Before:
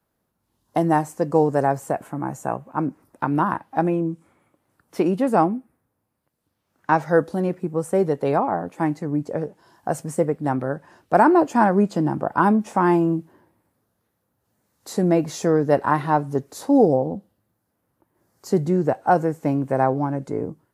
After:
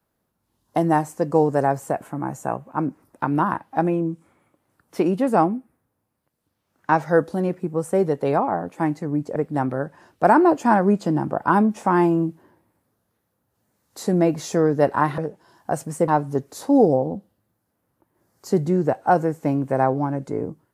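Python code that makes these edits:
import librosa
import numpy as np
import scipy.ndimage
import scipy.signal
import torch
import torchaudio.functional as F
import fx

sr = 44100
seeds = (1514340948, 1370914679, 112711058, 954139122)

y = fx.edit(x, sr, fx.move(start_s=9.36, length_s=0.9, to_s=16.08), tone=tone)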